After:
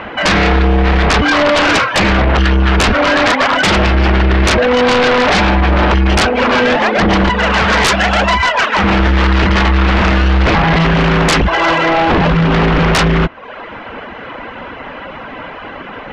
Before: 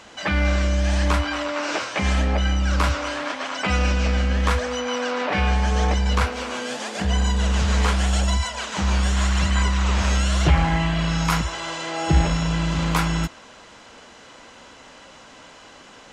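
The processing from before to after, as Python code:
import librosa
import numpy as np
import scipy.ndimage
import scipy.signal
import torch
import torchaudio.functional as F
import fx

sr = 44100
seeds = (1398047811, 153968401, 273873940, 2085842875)

y = scipy.signal.sosfilt(scipy.signal.butter(4, 2500.0, 'lowpass', fs=sr, output='sos'), x)
y = fx.dereverb_blind(y, sr, rt60_s=0.68)
y = fx.highpass(y, sr, hz=660.0, slope=6, at=(7.29, 8.84))
y = fx.rider(y, sr, range_db=4, speed_s=0.5)
y = fx.fold_sine(y, sr, drive_db=17, ceiling_db=-7.5)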